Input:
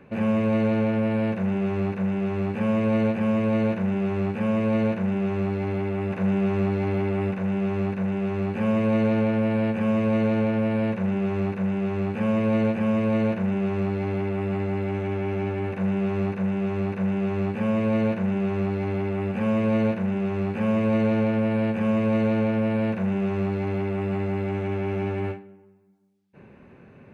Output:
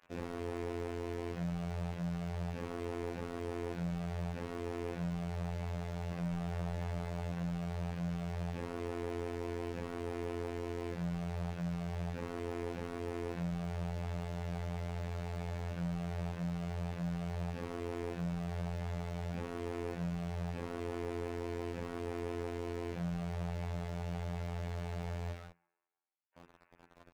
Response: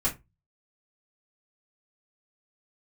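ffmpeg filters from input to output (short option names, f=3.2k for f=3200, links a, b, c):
-filter_complex "[0:a]aecho=1:1:156:0.188,aresample=11025,asoftclip=type=hard:threshold=-25dB,aresample=44100,lowpass=3.1k,acrossover=split=780[a][b];[a]acrusher=bits=6:mix=0:aa=0.000001[c];[b]aeval=exprs='val(0)*sin(2*PI*27*n/s)':c=same[d];[c][d]amix=inputs=2:normalize=0,aemphasis=mode=reproduction:type=50kf,bandreject=f=60:t=h:w=6,bandreject=f=120:t=h:w=6,bandreject=f=180:t=h:w=6,bandreject=f=240:t=h:w=6,bandreject=f=300:t=h:w=6,bandreject=f=360:t=h:w=6,bandreject=f=420:t=h:w=6,afftfilt=real='hypot(re,im)*cos(PI*b)':imag='0':win_size=2048:overlap=0.75,volume=-4dB"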